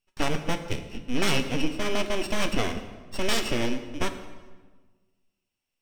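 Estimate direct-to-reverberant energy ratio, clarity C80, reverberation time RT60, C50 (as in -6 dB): 8.0 dB, 11.5 dB, 1.4 s, 9.5 dB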